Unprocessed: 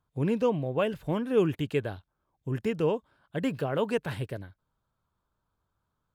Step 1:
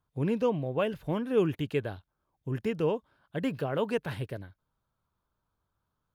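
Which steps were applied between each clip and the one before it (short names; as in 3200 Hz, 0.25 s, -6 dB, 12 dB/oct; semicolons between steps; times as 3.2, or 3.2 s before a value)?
bell 7800 Hz -6 dB 0.28 oct; gain -1.5 dB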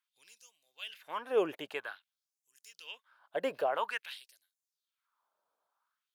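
LFO high-pass sine 0.5 Hz 560–7300 Hz; gain -1.5 dB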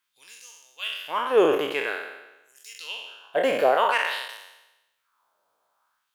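spectral trails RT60 1.01 s; gain +8.5 dB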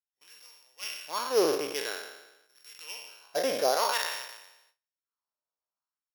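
sample sorter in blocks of 8 samples; gate with hold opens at -46 dBFS; gain -6 dB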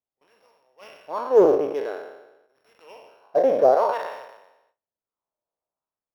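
EQ curve 260 Hz 0 dB, 630 Hz +4 dB, 1600 Hz -11 dB, 6700 Hz -28 dB; Doppler distortion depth 0.1 ms; gain +7.5 dB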